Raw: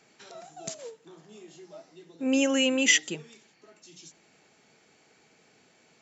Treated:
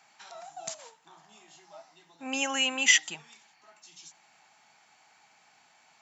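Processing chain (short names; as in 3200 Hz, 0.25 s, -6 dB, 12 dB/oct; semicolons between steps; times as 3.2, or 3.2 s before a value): resonant low shelf 610 Hz -10 dB, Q 3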